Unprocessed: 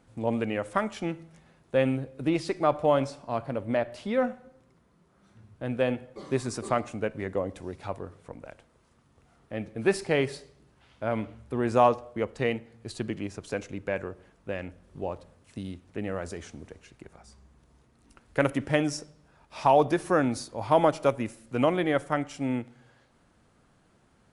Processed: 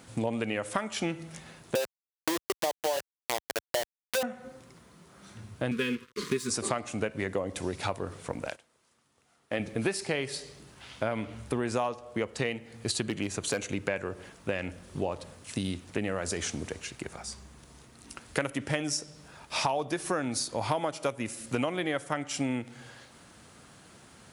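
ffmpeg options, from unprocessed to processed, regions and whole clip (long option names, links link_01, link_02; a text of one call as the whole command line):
ffmpeg -i in.wav -filter_complex "[0:a]asettb=1/sr,asplit=3[link_01][link_02][link_03];[link_01]atrim=end=1.754[link_04];[link_02]atrim=start=1.75:end=4.23,asetpts=PTS-STARTPTS,afade=type=in:duration=0.004:curve=qsin,afade=type=out:start_time=2.476:duration=0.004:curve=qsin,asuperpass=centerf=570:order=12:qfactor=0.86,aeval=exprs='val(0)*gte(abs(val(0)),0.0447)':channel_layout=same[link_05];[link_03]atrim=start=4.226[link_06];[link_04][link_05]acrossfade=duration=0.004:curve1=hsin:curve2=qsin[link_07];[link_07][link_06]acrossfade=duration=0.004:curve1=qsin:curve2=hsin,asettb=1/sr,asplit=3[link_08][link_09][link_10];[link_08]atrim=end=5.714[link_11];[link_09]atrim=start=5.71:end=6.5,asetpts=PTS-STARTPTS,afade=type=in:duration=0.004:curve=qsin,afade=type=out:start_time=0.786:duration=0.004:curve=qsin,aecho=1:1:4.8:0.68,atrim=end_sample=34839,aeval=exprs='sgn(val(0))*max(abs(val(0))-0.00473,0)':channel_layout=same,asuperstop=centerf=710:order=8:qfactor=1.4[link_12];[link_10]atrim=start=6.496[link_13];[link_11][link_12]acrossfade=duration=0.004:curve1=hsin:curve2=qsin[link_14];[link_14][link_13]acrossfade=duration=0.004:curve1=qsin:curve2=hsin,asettb=1/sr,asplit=3[link_15][link_16][link_17];[link_15]atrim=end=8.494[link_18];[link_16]atrim=start=8.49:end=9.6,asetpts=PTS-STARTPTS,afade=type=in:duration=0.004:curve=qsin,afade=type=out:start_time=1.106:duration=0.004:curve=qsin,agate=range=-14dB:threshold=-53dB:ratio=16:release=100:detection=peak,lowshelf=frequency=160:gain=-11.5[link_19];[link_17]atrim=start=9.596[link_20];[link_18][link_19]acrossfade=duration=0.004:curve1=hsin:curve2=qsin[link_21];[link_21][link_20]acrossfade=duration=0.004:curve1=qsin:curve2=hsin,asettb=1/sr,asplit=3[link_22][link_23][link_24];[link_22]atrim=end=13.034[link_25];[link_23]atrim=start=13.03:end=13.73,asetpts=PTS-STARTPTS,afade=type=in:duration=0.004:curve=qsin,afade=type=out:start_time=0.696:duration=0.004:curve=qsin,bandreject=frequency=5200:width=6.4,asoftclip=type=hard:threshold=-22.5dB[link_26];[link_24]atrim=start=13.726[link_27];[link_25][link_26]acrossfade=duration=0.004:curve1=hsin:curve2=qsin[link_28];[link_28][link_27]acrossfade=duration=0.004:curve1=qsin:curve2=hsin,highpass=64,highshelf=frequency=2200:gain=10.5,acompressor=threshold=-35dB:ratio=8,volume=8dB" out.wav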